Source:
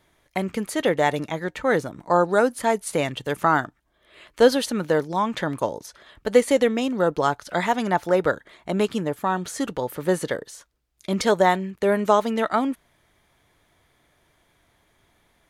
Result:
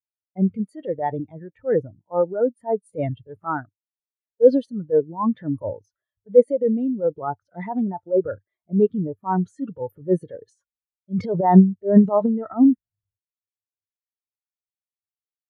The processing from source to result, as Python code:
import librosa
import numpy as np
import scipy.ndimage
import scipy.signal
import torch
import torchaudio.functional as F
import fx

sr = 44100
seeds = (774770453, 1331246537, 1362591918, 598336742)

y = fx.rider(x, sr, range_db=4, speed_s=0.5)
y = fx.transient(y, sr, attack_db=-9, sustain_db=fx.steps((0.0, 4.0), (10.41, 12.0)))
y = fx.peak_eq(y, sr, hz=99.0, db=14.0, octaves=0.33)
y = fx.spectral_expand(y, sr, expansion=2.5)
y = y * librosa.db_to_amplitude(4.5)